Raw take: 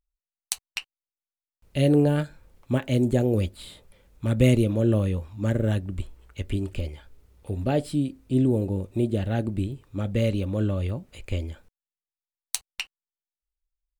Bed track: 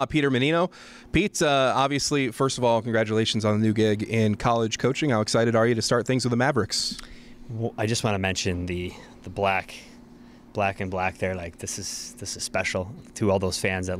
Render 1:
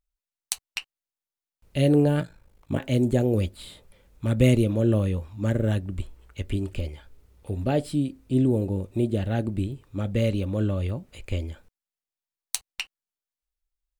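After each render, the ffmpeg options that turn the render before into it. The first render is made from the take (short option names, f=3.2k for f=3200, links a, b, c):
-filter_complex "[0:a]asettb=1/sr,asplit=3[a][b][c];[a]atrim=end=2.204[d];[b]atrim=start=2.2:end=2.8,asetpts=PTS-STARTPTS,afade=t=in:d=0.004:c=qsin,afade=t=out:st=0.596:d=0.004:c=qsin,aeval=exprs='val(0)*sin(2*PI*26*n/s)':c=same[e];[c]atrim=start=2.796[f];[d][e]acrossfade=d=0.004:c1=hsin:c2=qsin[g];[g][f]acrossfade=d=0.004:c1=qsin:c2=hsin"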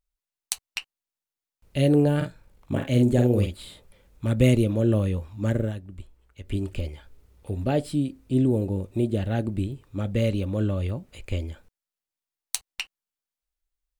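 -filter_complex "[0:a]asettb=1/sr,asplit=3[a][b][c];[a]atrim=end=2.164[d];[b]atrim=start=2.16:end=3.59,asetpts=PTS-STARTPTS,afade=t=in:d=0.004:c=qsin,afade=t=out:st=1.426:d=0.004:c=qsin,asplit=2[e][f];[f]adelay=49,volume=-5dB[g];[e][g]amix=inputs=2:normalize=0,atrim=end_sample=63063[h];[c]atrim=start=3.586[i];[d][h]acrossfade=d=0.004:c1=hsin:c2=qsin[j];[j][i]acrossfade=d=0.004:c1=qsin:c2=hsin,asplit=3[k][l][m];[k]atrim=end=5.73,asetpts=PTS-STARTPTS,afade=t=out:st=5.6:d=0.13:silence=0.334965[n];[l]atrim=start=5.73:end=6.43,asetpts=PTS-STARTPTS,volume=-9.5dB[o];[m]atrim=start=6.43,asetpts=PTS-STARTPTS,afade=t=in:d=0.13:silence=0.334965[p];[n][o][p]concat=n=3:v=0:a=1"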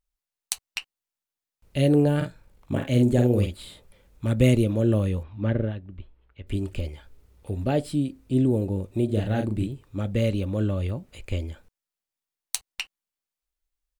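-filter_complex "[0:a]asettb=1/sr,asplit=3[a][b][c];[a]atrim=end=5.234[d];[b]atrim=start=5.23:end=6.47,asetpts=PTS-STARTPTS,afade=t=in:d=0.004:c=qsin,afade=t=out:st=1.236:d=0.004:c=qsin,lowpass=f=3.7k:w=0.5412,lowpass=f=3.7k:w=1.3066[e];[c]atrim=start=6.466[f];[d][e]acrossfade=d=0.004:c1=hsin:c2=qsin[g];[g][f]acrossfade=d=0.004:c1=qsin:c2=hsin,asplit=3[h][i][j];[h]afade=t=out:st=9.08:d=0.02[k];[i]asplit=2[l][m];[m]adelay=38,volume=-4.5dB[n];[l][n]amix=inputs=2:normalize=0,afade=t=in:st=9.08:d=0.02,afade=t=out:st=9.66:d=0.02[o];[j]afade=t=in:st=9.66:d=0.02[p];[k][o][p]amix=inputs=3:normalize=0"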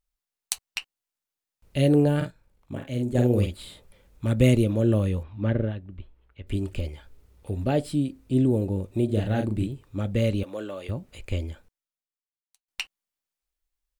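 -filter_complex "[0:a]asettb=1/sr,asplit=3[a][b][c];[a]atrim=end=10.434[d];[b]atrim=start=10.43:end=10.89,asetpts=PTS-STARTPTS,afade=t=in:d=0.004:c=qsin,afade=t=out:st=0.456:d=0.004:c=qsin,highpass=460[e];[c]atrim=start=10.886[f];[d][e]acrossfade=d=0.004:c1=hsin:c2=qsin[g];[g][f]acrossfade=d=0.004:c1=qsin:c2=hsin,asplit=4[h][i][j][k];[h]atrim=end=2.31,asetpts=PTS-STARTPTS,afade=t=out:st=1.92:d=0.39:c=log:silence=0.398107[l];[i]atrim=start=2.31:end=3.15,asetpts=PTS-STARTPTS,volume=-8dB[m];[j]atrim=start=3.15:end=12.68,asetpts=PTS-STARTPTS,afade=t=in:d=0.39:c=log:silence=0.398107,afade=t=out:st=8.36:d=1.17:c=qua[n];[k]atrim=start=12.68,asetpts=PTS-STARTPTS,afade=t=in:d=0.004:c=hsin[o];[l][m][n][o]concat=n=4:v=0:a=1"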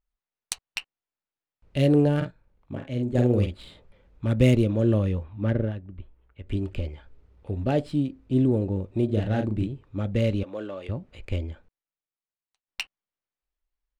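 -af "adynamicsmooth=sensitivity=7:basefreq=3.2k"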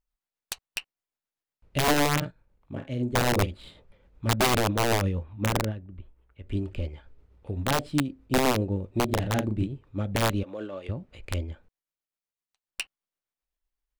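-af "aeval=exprs='(mod(5.62*val(0)+1,2)-1)/5.62':c=same,tremolo=f=7.9:d=0.34"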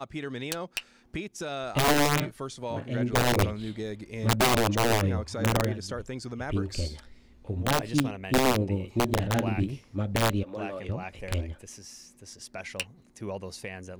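-filter_complex "[1:a]volume=-13.5dB[a];[0:a][a]amix=inputs=2:normalize=0"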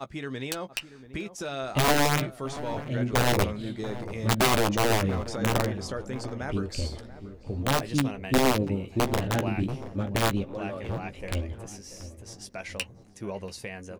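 -filter_complex "[0:a]asplit=2[a][b];[b]adelay=15,volume=-10dB[c];[a][c]amix=inputs=2:normalize=0,asplit=2[d][e];[e]adelay=685,lowpass=f=960:p=1,volume=-13dB,asplit=2[f][g];[g]adelay=685,lowpass=f=960:p=1,volume=0.51,asplit=2[h][i];[i]adelay=685,lowpass=f=960:p=1,volume=0.51,asplit=2[j][k];[k]adelay=685,lowpass=f=960:p=1,volume=0.51,asplit=2[l][m];[m]adelay=685,lowpass=f=960:p=1,volume=0.51[n];[d][f][h][j][l][n]amix=inputs=6:normalize=0"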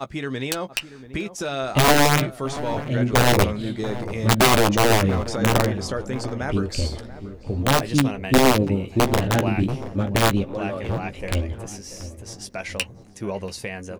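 -af "volume=6.5dB"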